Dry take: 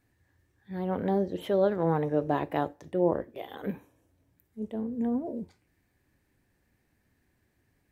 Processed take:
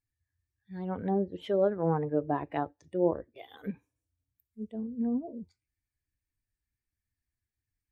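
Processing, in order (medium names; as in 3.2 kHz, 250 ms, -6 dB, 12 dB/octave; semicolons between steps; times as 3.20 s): expander on every frequency bin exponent 1.5; low-pass that closes with the level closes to 1.6 kHz, closed at -26.5 dBFS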